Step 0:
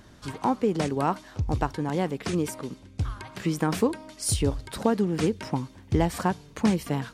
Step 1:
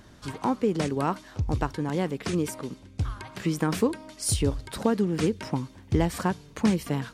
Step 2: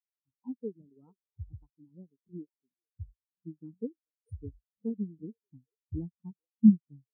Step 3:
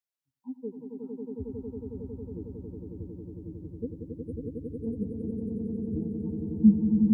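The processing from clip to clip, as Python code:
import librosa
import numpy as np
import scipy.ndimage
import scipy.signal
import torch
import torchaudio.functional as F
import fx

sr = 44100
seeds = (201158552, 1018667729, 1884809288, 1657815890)

y1 = fx.dynamic_eq(x, sr, hz=770.0, q=2.3, threshold_db=-39.0, ratio=4.0, max_db=-4)
y2 = fx.echo_stepped(y1, sr, ms=439, hz=520.0, octaves=0.7, feedback_pct=70, wet_db=-10)
y2 = fx.spectral_expand(y2, sr, expansion=4.0)
y3 = fx.echo_swell(y2, sr, ms=91, loudest=8, wet_db=-4.5)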